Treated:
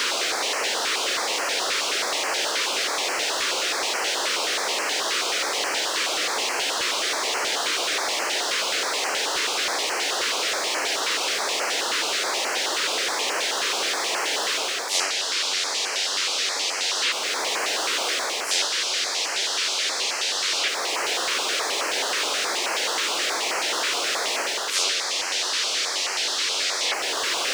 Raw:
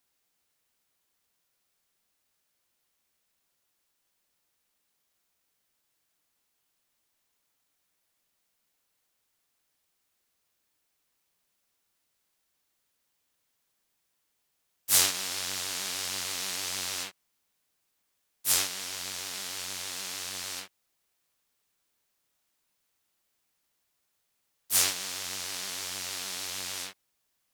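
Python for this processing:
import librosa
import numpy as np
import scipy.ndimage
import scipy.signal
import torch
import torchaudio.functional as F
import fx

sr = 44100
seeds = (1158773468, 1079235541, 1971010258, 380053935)

y = x + 0.5 * 10.0 ** (-19.0 / 20.0) * np.sign(x)
y = scipy.signal.sosfilt(scipy.signal.butter(4, 380.0, 'highpass', fs=sr, output='sos'), y)
y = fx.air_absorb(y, sr, metres=130.0)
y = fx.rider(y, sr, range_db=10, speed_s=0.5)
y = fx.filter_held_notch(y, sr, hz=9.4, low_hz=750.0, high_hz=3600.0)
y = y * 10.0 ** (9.0 / 20.0)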